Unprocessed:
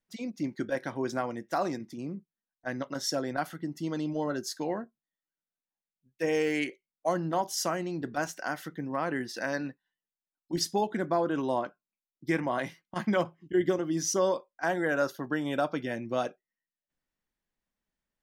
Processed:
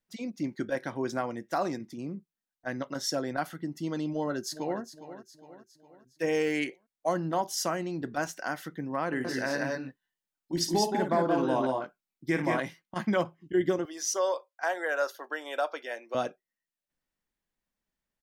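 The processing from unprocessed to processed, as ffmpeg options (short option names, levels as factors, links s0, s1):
-filter_complex "[0:a]asplit=2[s0][s1];[s1]afade=t=in:st=4.11:d=0.01,afade=t=out:st=4.81:d=0.01,aecho=0:1:410|820|1230|1640|2050:0.223872|0.111936|0.055968|0.027984|0.013992[s2];[s0][s2]amix=inputs=2:normalize=0,asettb=1/sr,asplit=3[s3][s4][s5];[s3]atrim=end=9.074[s6];[s4]atrim=start=9.07:end=12.6,asetpts=PTS-STARTPTS,afade=t=in:d=0.004:c=qsin,afade=t=out:st=3.526:d=0.004:c=qsin,aecho=1:1:54|174|197:0.355|0.596|0.596,atrim=end_sample=155673[s7];[s5]atrim=start=12.596[s8];[s6][s7]acrossfade=d=0.004:c1=hsin:c2=qsin[s9];[s9][s8]acrossfade=d=0.004:c1=qsin:c2=hsin,asettb=1/sr,asplit=3[s10][s11][s12];[s10]atrim=end=13.854[s13];[s11]atrim=start=13.85:end=16.15,asetpts=PTS-STARTPTS,afade=t=in:d=0.004:c=qsin,afade=t=out:st=2.296:d=0.004:c=qsin,highpass=f=470:w=0.5412,highpass=f=470:w=1.3066[s14];[s12]atrim=start=16.146[s15];[s13][s14]acrossfade=d=0.004:c1=hsin:c2=qsin[s16];[s16][s15]acrossfade=d=0.004:c1=qsin:c2=hsin"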